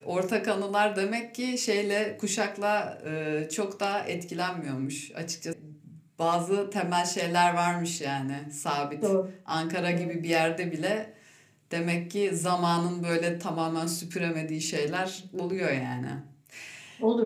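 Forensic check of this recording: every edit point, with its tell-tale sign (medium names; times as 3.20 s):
5.53 s: sound stops dead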